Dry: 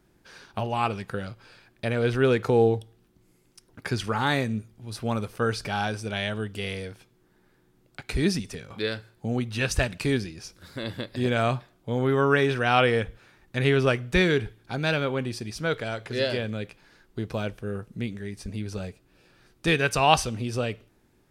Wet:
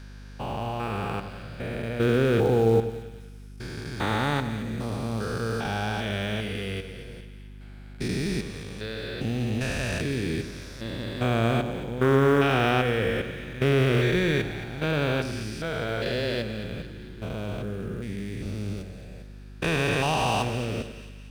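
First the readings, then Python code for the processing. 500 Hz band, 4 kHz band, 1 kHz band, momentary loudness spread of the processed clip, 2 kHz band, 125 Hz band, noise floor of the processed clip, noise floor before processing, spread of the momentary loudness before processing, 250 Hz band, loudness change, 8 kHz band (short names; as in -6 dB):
0.0 dB, -1.5 dB, -2.0 dB, 18 LU, -1.5 dB, +1.5 dB, -43 dBFS, -64 dBFS, 15 LU, +1.0 dB, -0.5 dB, -3.0 dB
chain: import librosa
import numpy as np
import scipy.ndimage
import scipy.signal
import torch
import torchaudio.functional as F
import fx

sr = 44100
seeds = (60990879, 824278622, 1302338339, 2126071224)

p1 = fx.spec_steps(x, sr, hold_ms=400)
p2 = fx.quant_float(p1, sr, bits=2)
p3 = p1 + F.gain(torch.from_numpy(p2), -8.5).numpy()
p4 = fx.echo_split(p3, sr, split_hz=1400.0, low_ms=96, high_ms=223, feedback_pct=52, wet_db=-11.0)
y = fx.add_hum(p4, sr, base_hz=50, snr_db=16)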